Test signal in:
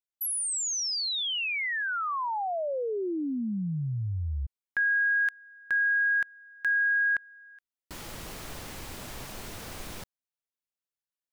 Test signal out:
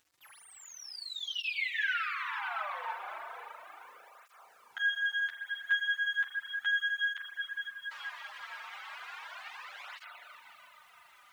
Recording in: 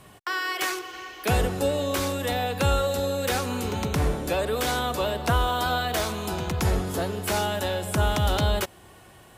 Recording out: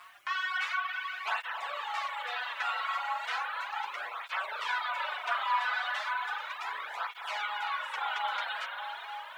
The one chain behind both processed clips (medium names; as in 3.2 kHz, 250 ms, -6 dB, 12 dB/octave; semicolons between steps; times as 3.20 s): comb filter that takes the minimum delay 9.9 ms; on a send: echo that smears into a reverb 542 ms, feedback 45%, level -13 dB; on the sum: spring tank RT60 3.7 s, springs 37 ms, chirp 30 ms, DRR -2 dB; in parallel at +1 dB: compression 20:1, threshold -35 dBFS; on the sum: low-pass 2.6 kHz 12 dB/octave; upward compressor, threshold -41 dBFS; inverse Chebyshev high-pass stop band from 210 Hz, stop band 70 dB; bit crusher 10-bit; reverb removal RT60 0.86 s; cancelling through-zero flanger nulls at 0.35 Hz, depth 5.2 ms